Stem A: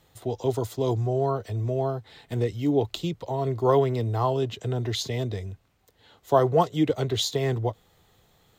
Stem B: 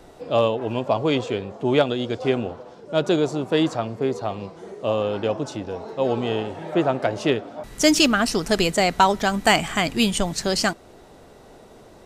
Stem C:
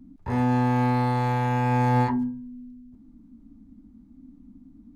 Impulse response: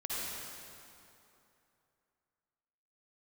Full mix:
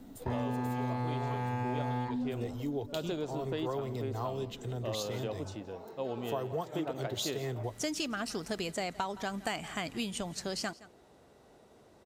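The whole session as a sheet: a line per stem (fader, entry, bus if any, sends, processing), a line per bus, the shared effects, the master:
-9.5 dB, 0.00 s, no send, echo send -19 dB, high shelf 7000 Hz +11 dB
-12.5 dB, 0.00 s, no send, echo send -21.5 dB, HPF 51 Hz
-2.5 dB, 0.00 s, no send, no echo send, dry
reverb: off
echo: echo 0.168 s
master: compressor, threshold -31 dBFS, peak gain reduction 11.5 dB

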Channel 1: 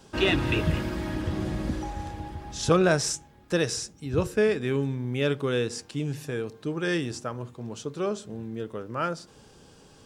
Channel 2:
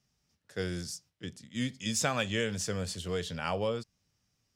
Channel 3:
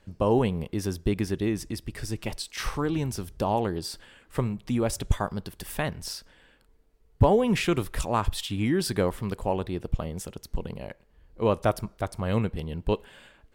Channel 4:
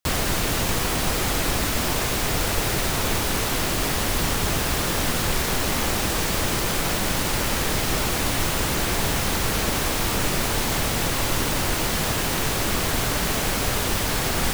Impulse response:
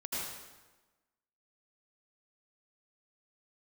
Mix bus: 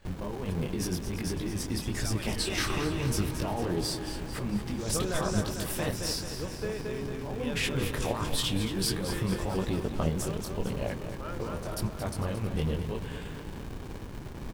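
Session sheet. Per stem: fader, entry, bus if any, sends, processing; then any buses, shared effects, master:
-13.0 dB, 2.25 s, no send, echo send -3 dB, dry
-11.5 dB, 0.00 s, no send, no echo send, per-bin expansion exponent 2; backwards sustainer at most 58 dB/s
+2.5 dB, 0.00 s, no send, echo send -10 dB, negative-ratio compressor -31 dBFS, ratio -1; detuned doubles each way 32 cents
-13.0 dB, 0.00 s, no send, no echo send, running maximum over 65 samples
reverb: off
echo: feedback echo 0.224 s, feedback 55%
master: dry

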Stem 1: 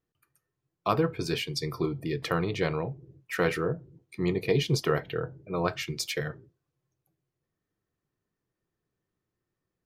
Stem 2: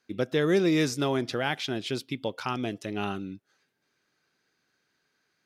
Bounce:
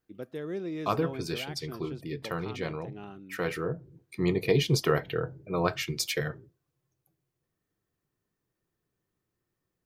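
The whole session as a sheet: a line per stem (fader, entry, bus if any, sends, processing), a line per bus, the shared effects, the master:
+1.0 dB, 0.00 s, no send, auto duck -7 dB, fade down 1.85 s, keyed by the second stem
-13.5 dB, 0.00 s, no send, HPF 380 Hz 6 dB/oct; tilt -3.5 dB/oct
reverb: off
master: high shelf 11000 Hz +5.5 dB

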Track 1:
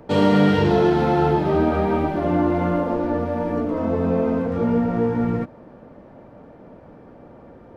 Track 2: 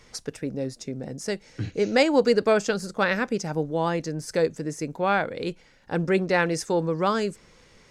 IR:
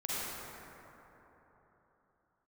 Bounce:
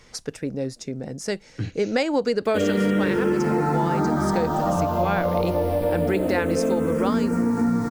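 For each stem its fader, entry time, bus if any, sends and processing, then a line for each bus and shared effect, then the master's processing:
+1.5 dB, 2.45 s, send -7.5 dB, bit-crush 7-bit; endless phaser -0.26 Hz
+2.0 dB, 0.00 s, no send, dry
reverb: on, RT60 3.9 s, pre-delay 37 ms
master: compressor, threshold -18 dBFS, peak gain reduction 9 dB

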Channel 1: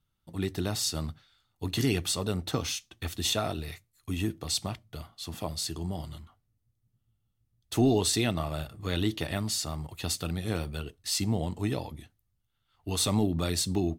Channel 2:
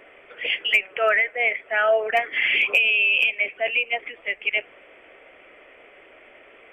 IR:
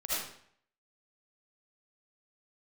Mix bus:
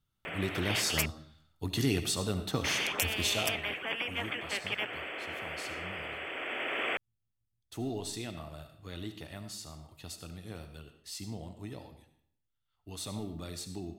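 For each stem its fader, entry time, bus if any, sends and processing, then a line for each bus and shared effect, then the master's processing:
3.27 s -3.5 dB -> 3.66 s -14 dB, 0.00 s, send -13 dB, dry
+1.0 dB, 0.25 s, muted 1.06–2.64, no send, HPF 120 Hz; high shelf 2400 Hz +6.5 dB; spectral compressor 4:1; auto duck -8 dB, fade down 0.30 s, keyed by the first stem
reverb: on, RT60 0.60 s, pre-delay 35 ms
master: short-mantissa float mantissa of 6-bit

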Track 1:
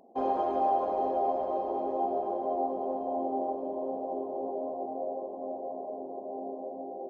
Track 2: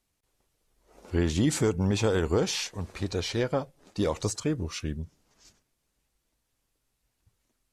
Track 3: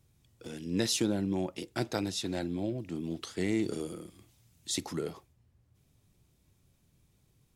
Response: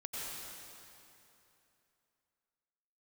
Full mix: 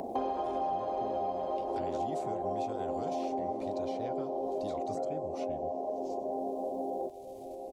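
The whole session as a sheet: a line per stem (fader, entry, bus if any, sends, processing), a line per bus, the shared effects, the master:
-4.5 dB, 0.00 s, send -14.5 dB, dry
-19.5 dB, 0.65 s, send -23.5 dB, bell 1700 Hz -7.5 dB 0.23 oct
-19.0 dB, 0.00 s, no send, treble ducked by the level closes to 870 Hz, closed at -26 dBFS; transient shaper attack +2 dB, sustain -10 dB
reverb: on, RT60 2.9 s, pre-delay 83 ms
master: three-band squash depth 100%

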